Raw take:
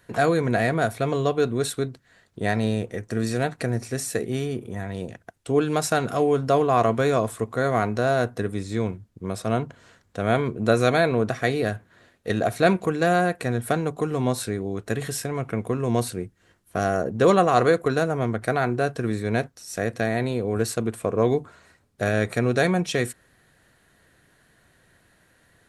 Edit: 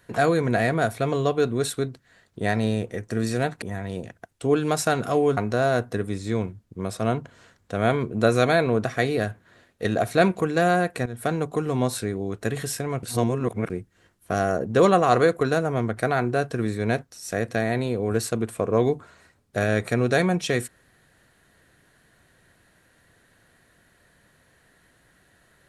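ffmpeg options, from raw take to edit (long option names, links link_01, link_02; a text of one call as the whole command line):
ffmpeg -i in.wav -filter_complex "[0:a]asplit=6[link_01][link_02][link_03][link_04][link_05][link_06];[link_01]atrim=end=3.622[link_07];[link_02]atrim=start=4.668:end=6.422[link_08];[link_03]atrim=start=7.818:end=13.51,asetpts=PTS-STARTPTS,afade=type=out:start_time=5.688:duration=0.004:curve=hsin:silence=0.188365[link_09];[link_04]atrim=start=13.51:end=15.482,asetpts=PTS-STARTPTS,afade=type=in:duration=0.29:silence=0.188365[link_10];[link_05]atrim=start=15.478:end=16.152,asetpts=PTS-STARTPTS,areverse[link_11];[link_06]atrim=start=16.148[link_12];[link_07][link_08]acrossfade=duration=0.004:curve1=hsin:curve2=hsin[link_13];[link_09][link_10]concat=n=2:v=0:a=1[link_14];[link_13][link_14]acrossfade=duration=0.004:curve1=hsin:curve2=hsin[link_15];[link_15][link_11]acrossfade=duration=0.004:curve1=hsin:curve2=hsin[link_16];[link_16][link_12]acrossfade=duration=0.004:curve1=hsin:curve2=hsin" out.wav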